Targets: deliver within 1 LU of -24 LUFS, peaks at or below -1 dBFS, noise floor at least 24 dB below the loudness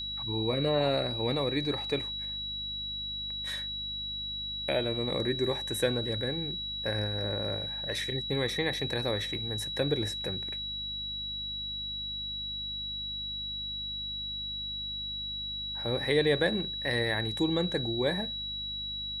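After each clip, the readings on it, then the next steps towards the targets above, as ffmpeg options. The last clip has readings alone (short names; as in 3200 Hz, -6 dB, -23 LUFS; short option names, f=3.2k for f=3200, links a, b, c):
hum 50 Hz; harmonics up to 250 Hz; hum level -45 dBFS; steady tone 3900 Hz; tone level -34 dBFS; loudness -31.0 LUFS; peak -13.5 dBFS; loudness target -24.0 LUFS
-> -af "bandreject=f=50:t=h:w=4,bandreject=f=100:t=h:w=4,bandreject=f=150:t=h:w=4,bandreject=f=200:t=h:w=4,bandreject=f=250:t=h:w=4"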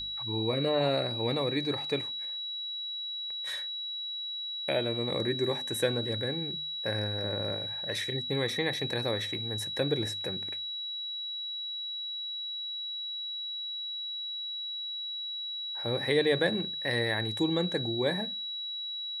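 hum none; steady tone 3900 Hz; tone level -34 dBFS
-> -af "bandreject=f=3.9k:w=30"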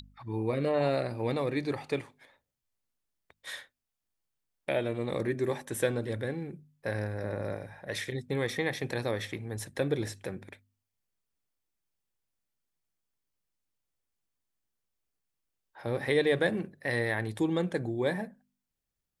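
steady tone none; loudness -32.0 LUFS; peak -14.0 dBFS; loudness target -24.0 LUFS
-> -af "volume=8dB"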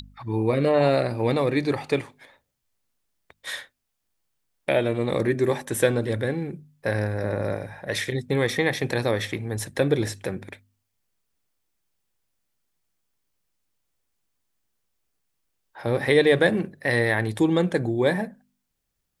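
loudness -24.5 LUFS; peak -6.0 dBFS; noise floor -78 dBFS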